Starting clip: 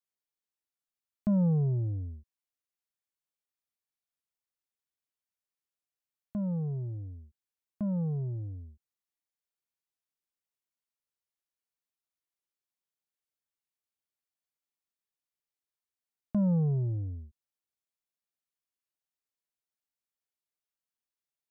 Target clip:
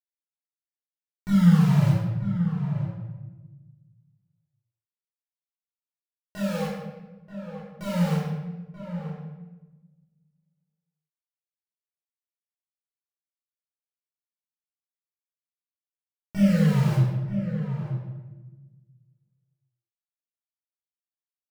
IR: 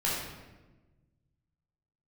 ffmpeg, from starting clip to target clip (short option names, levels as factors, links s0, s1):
-filter_complex "[0:a]asetnsamples=n=441:p=0,asendcmd='8 equalizer g 4.5',equalizer=f=570:t=o:w=0.27:g=-13,aeval=exprs='val(0)*gte(abs(val(0)),0.0335)':c=same,flanger=delay=19:depth=4.8:speed=1.7,asplit=2[s0][s1];[s1]adelay=932.9,volume=0.355,highshelf=f=4000:g=-21[s2];[s0][s2]amix=inputs=2:normalize=0[s3];[1:a]atrim=start_sample=2205[s4];[s3][s4]afir=irnorm=-1:irlink=0"